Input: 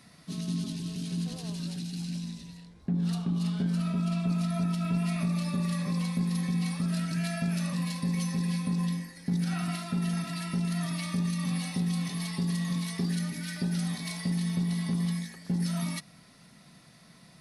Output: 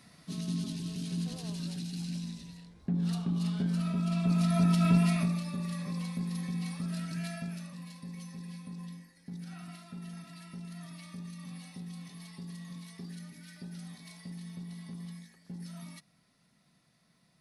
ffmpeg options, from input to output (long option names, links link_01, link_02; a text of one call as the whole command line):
ffmpeg -i in.wav -af "volume=5.5dB,afade=type=in:start_time=4.06:duration=0.84:silence=0.421697,afade=type=out:start_time=4.9:duration=0.53:silence=0.266073,afade=type=out:start_time=7.27:duration=0.42:silence=0.398107" out.wav